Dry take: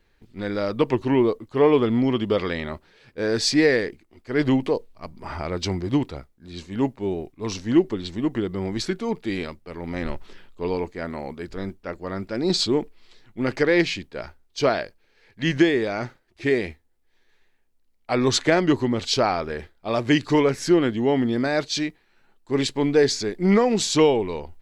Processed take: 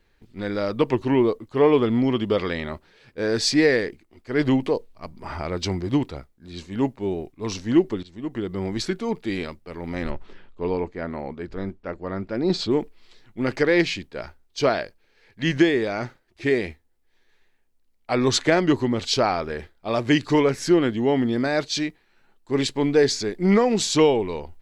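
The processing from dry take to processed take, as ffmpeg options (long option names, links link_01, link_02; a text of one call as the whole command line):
ffmpeg -i in.wav -filter_complex "[0:a]asettb=1/sr,asplit=3[link_01][link_02][link_03];[link_01]atrim=end=10.104[link_04];[link_02]atrim=start=10.1:end=12.71,asetpts=PTS-STARTPTS,afade=type=in:duration=0.004:curve=qsin,afade=type=out:start_time=2.606:duration=0.004:curve=qsin,aemphasis=mode=reproduction:type=75fm[link_05];[link_03]atrim=start=12.706[link_06];[link_04][link_05]acrossfade=duration=0.004:curve1=hsin:curve2=qsin[link_07];[link_07][link_06]acrossfade=duration=0.004:curve1=qsin:curve2=hsin,asplit=2[link_08][link_09];[link_08]atrim=end=8.03,asetpts=PTS-STARTPTS,afade=type=out:start_time=8.026:duration=0.004:curve=hsin:silence=0.112202[link_10];[link_09]atrim=start=8.03,asetpts=PTS-STARTPTS,afade=type=in:duration=0.56:silence=0.112202[link_11];[link_10][link_11]concat=n=2:v=0:a=1" out.wav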